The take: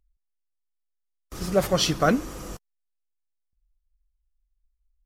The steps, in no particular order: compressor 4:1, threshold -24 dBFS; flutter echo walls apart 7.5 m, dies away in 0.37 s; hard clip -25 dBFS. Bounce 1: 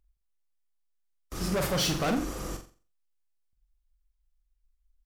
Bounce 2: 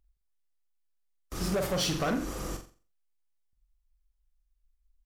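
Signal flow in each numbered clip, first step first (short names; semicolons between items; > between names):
hard clip > compressor > flutter echo; compressor > flutter echo > hard clip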